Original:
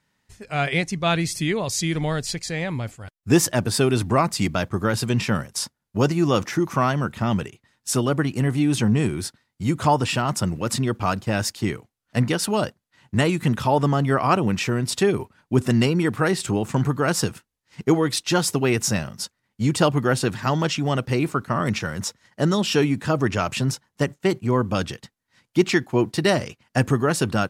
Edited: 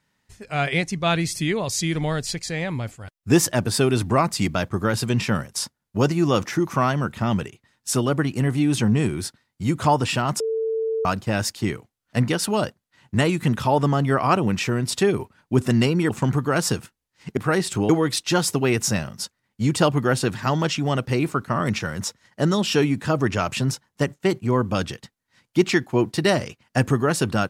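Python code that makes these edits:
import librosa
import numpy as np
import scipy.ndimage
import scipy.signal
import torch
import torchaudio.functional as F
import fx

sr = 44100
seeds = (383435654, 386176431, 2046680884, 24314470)

y = fx.edit(x, sr, fx.bleep(start_s=10.4, length_s=0.65, hz=446.0, db=-21.0),
    fx.move(start_s=16.1, length_s=0.52, to_s=17.89), tone=tone)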